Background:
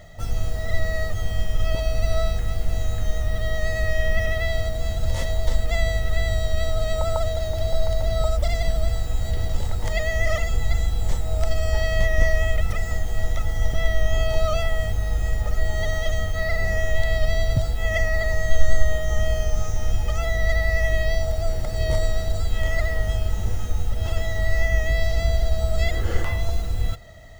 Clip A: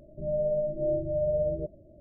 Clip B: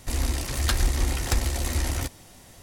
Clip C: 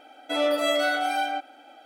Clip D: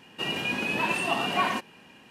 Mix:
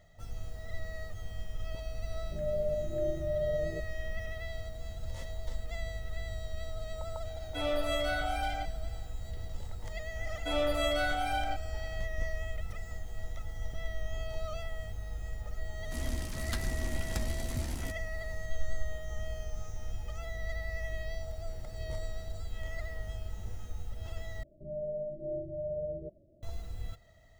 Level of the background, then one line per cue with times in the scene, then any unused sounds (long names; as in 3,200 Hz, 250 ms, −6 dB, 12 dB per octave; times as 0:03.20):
background −16 dB
0:02.14: mix in A −5 dB
0:07.25: mix in C −9 dB
0:10.16: mix in C −7 dB
0:15.84: mix in B −13 dB + parametric band 190 Hz +14 dB 0.69 octaves
0:24.43: overwrite with A −9 dB
not used: D